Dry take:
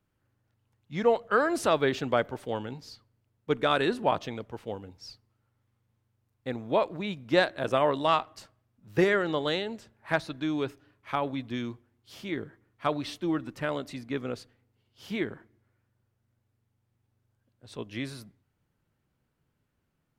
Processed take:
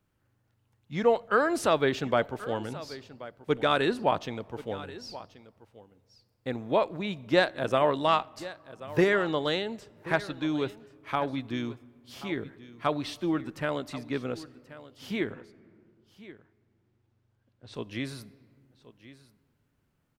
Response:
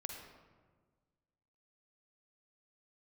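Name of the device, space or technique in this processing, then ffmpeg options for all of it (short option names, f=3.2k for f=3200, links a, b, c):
compressed reverb return: -filter_complex "[0:a]asplit=2[a][b];[1:a]atrim=start_sample=2205[c];[b][c]afir=irnorm=-1:irlink=0,acompressor=threshold=-45dB:ratio=4,volume=-7dB[d];[a][d]amix=inputs=2:normalize=0,asettb=1/sr,asplit=3[e][f][g];[e]atrim=end=15.324[h];[f]atrim=start=15.32:end=17.74,asetpts=PTS-STARTPTS,afade=t=in:d=0.004:c=qsin,afade=t=out:st=2.416:d=0.004:c=qsin,lowpass=5.4k[i];[g]atrim=start=17.736[j];[h][i]acrossfade=d=0.004:c1=hsin:c2=qsin[k];[k][j]acrossfade=d=0.004:c1=qsin:c2=hsin,aecho=1:1:1081:0.141"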